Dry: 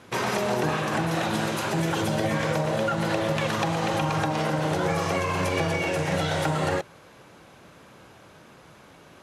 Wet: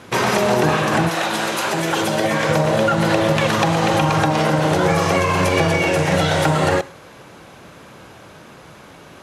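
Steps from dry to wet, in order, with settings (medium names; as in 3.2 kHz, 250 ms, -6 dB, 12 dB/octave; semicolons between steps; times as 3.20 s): 1.08–2.48 s: high-pass 750 Hz -> 250 Hz 6 dB/octave; reverberation, pre-delay 48 ms, DRR 19.5 dB; trim +8.5 dB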